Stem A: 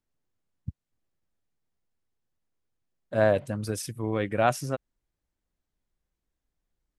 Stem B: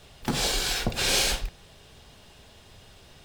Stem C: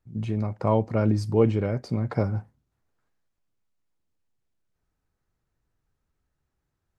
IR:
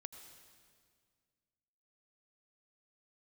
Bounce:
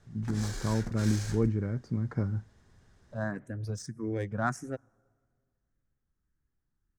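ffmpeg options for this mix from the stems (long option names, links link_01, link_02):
-filter_complex "[0:a]asplit=2[link_01][link_02];[link_02]afreqshift=1.7[link_03];[link_01][link_03]amix=inputs=2:normalize=1,volume=0.5dB,asplit=2[link_04][link_05];[link_05]volume=-19.5dB[link_06];[1:a]alimiter=limit=-16.5dB:level=0:latency=1:release=425,acrusher=bits=2:mode=log:mix=0:aa=0.000001,volume=-7.5dB[link_07];[2:a]equalizer=frequency=700:width_type=o:width=0.77:gain=-4.5,volume=-4dB,asplit=2[link_08][link_09];[link_09]apad=whole_len=308145[link_10];[link_04][link_10]sidechaincompress=threshold=-38dB:ratio=8:attack=31:release=1350[link_11];[3:a]atrim=start_sample=2205[link_12];[link_06][link_12]afir=irnorm=-1:irlink=0[link_13];[link_11][link_07][link_08][link_13]amix=inputs=4:normalize=0,adynamicsmooth=sensitivity=3.5:basefreq=4000,firequalizer=gain_entry='entry(230,0);entry(580,-9);entry(1700,0);entry(2700,-15);entry(6300,4)':delay=0.05:min_phase=1"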